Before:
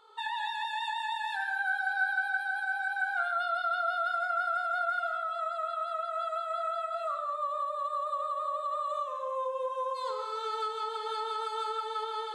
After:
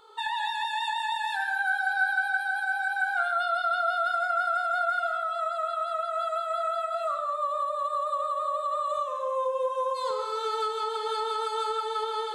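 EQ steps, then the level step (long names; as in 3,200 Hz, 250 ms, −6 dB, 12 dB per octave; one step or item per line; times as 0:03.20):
low-shelf EQ 370 Hz +10 dB
high-shelf EQ 5,200 Hz +7 dB
+2.5 dB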